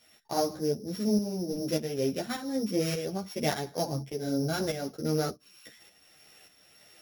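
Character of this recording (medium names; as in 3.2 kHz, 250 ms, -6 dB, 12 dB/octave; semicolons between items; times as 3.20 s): a buzz of ramps at a fixed pitch in blocks of 8 samples; tremolo saw up 1.7 Hz, depth 60%; a shimmering, thickened sound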